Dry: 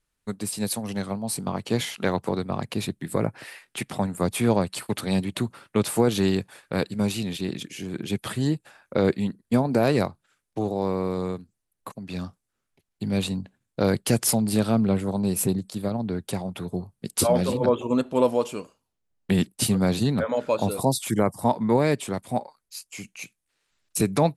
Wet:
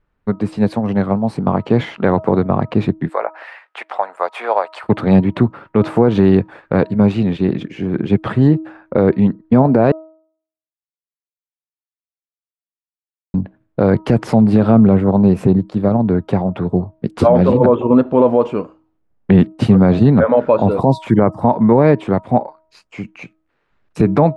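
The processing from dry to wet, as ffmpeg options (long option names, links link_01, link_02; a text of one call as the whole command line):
ffmpeg -i in.wav -filter_complex "[0:a]asettb=1/sr,asplit=3[link_01][link_02][link_03];[link_01]atrim=end=3.094[link_04];[link_02]atrim=start=3.09:end=4.84,asetpts=PTS-STARTPTS,afade=type=in:duration=0.004:curve=qsin,afade=type=out:start_time=1.746:duration=0.004:curve=qsin,highpass=frequency=640:width=0.5412,highpass=frequency=640:width=1.3066[link_05];[link_03]atrim=start=4.836[link_06];[link_04][link_05]acrossfade=duration=0.004:curve1=hsin:curve2=qsin[link_07];[link_07][link_06]acrossfade=duration=0.004:curve1=qsin:curve2=hsin,asplit=3[link_08][link_09][link_10];[link_08]atrim=end=9.92,asetpts=PTS-STARTPTS,afade=type=out:start_time=9.916:duration=0.004:curve=hsin[link_11];[link_09]atrim=start=9.92:end=13.34,asetpts=PTS-STARTPTS,volume=0[link_12];[link_10]atrim=start=13.34,asetpts=PTS-STARTPTS,afade=type=in:duration=0.004:curve=hsin[link_13];[link_11][link_12][link_13]concat=n=3:v=0:a=1,lowpass=1400,bandreject=frequency=317.6:width_type=h:width=4,bandreject=frequency=635.2:width_type=h:width=4,bandreject=frequency=952.8:width_type=h:width=4,bandreject=frequency=1270.4:width_type=h:width=4,alimiter=level_in=14.5dB:limit=-1dB:release=50:level=0:latency=1,volume=-1dB" out.wav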